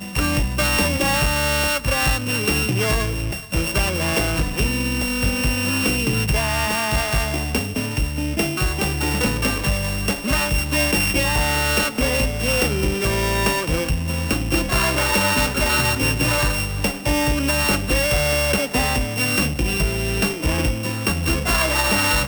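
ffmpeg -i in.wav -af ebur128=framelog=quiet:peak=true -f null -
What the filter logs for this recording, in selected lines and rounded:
Integrated loudness:
  I:         -19.8 LUFS
  Threshold: -29.8 LUFS
Loudness range:
  LRA:         2.3 LU
  Threshold: -39.8 LUFS
  LRA low:   -21.1 LUFS
  LRA high:  -18.9 LUFS
True peak:
  Peak:       -5.1 dBFS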